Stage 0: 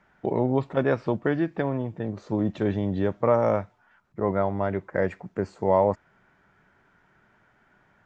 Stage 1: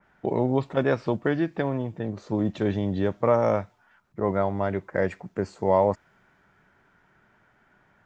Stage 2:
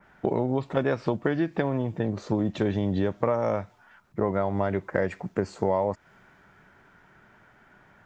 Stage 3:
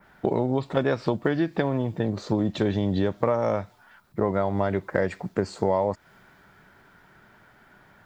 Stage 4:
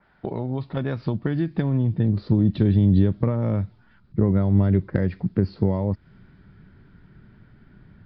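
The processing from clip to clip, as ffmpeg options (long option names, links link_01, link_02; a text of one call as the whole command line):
ffmpeg -i in.wav -af "adynamicequalizer=threshold=0.00708:dfrequency=2900:dqfactor=0.7:tfrequency=2900:tqfactor=0.7:attack=5:release=100:ratio=0.375:range=3:mode=boostabove:tftype=highshelf" out.wav
ffmpeg -i in.wav -af "acompressor=threshold=-27dB:ratio=5,volume=5.5dB" out.wav
ffmpeg -i in.wav -af "aexciter=amount=2.3:drive=1.2:freq=3600,volume=1.5dB" out.wav
ffmpeg -i in.wav -af "asubboost=boost=11.5:cutoff=230,aresample=11025,aresample=44100,volume=-5.5dB" out.wav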